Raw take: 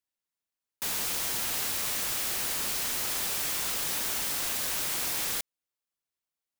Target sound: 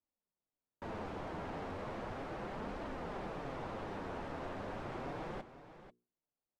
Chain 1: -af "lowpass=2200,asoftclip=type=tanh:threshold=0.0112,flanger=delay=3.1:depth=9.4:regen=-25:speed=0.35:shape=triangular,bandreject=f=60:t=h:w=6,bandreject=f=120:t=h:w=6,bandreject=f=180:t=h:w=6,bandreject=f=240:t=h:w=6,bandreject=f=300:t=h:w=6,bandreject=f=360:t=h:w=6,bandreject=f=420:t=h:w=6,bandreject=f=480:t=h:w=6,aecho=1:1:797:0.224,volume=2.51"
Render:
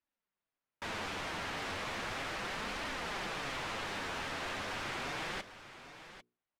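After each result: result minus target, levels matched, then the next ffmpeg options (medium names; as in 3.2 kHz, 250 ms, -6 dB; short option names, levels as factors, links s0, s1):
echo 306 ms late; 2 kHz band +6.5 dB
-af "lowpass=2200,asoftclip=type=tanh:threshold=0.0112,flanger=delay=3.1:depth=9.4:regen=-25:speed=0.35:shape=triangular,bandreject=f=60:t=h:w=6,bandreject=f=120:t=h:w=6,bandreject=f=180:t=h:w=6,bandreject=f=240:t=h:w=6,bandreject=f=300:t=h:w=6,bandreject=f=360:t=h:w=6,bandreject=f=420:t=h:w=6,bandreject=f=480:t=h:w=6,aecho=1:1:491:0.224,volume=2.51"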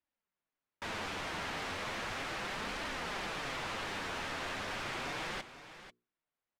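2 kHz band +6.5 dB
-af "lowpass=750,asoftclip=type=tanh:threshold=0.0112,flanger=delay=3.1:depth=9.4:regen=-25:speed=0.35:shape=triangular,bandreject=f=60:t=h:w=6,bandreject=f=120:t=h:w=6,bandreject=f=180:t=h:w=6,bandreject=f=240:t=h:w=6,bandreject=f=300:t=h:w=6,bandreject=f=360:t=h:w=6,bandreject=f=420:t=h:w=6,bandreject=f=480:t=h:w=6,aecho=1:1:491:0.224,volume=2.51"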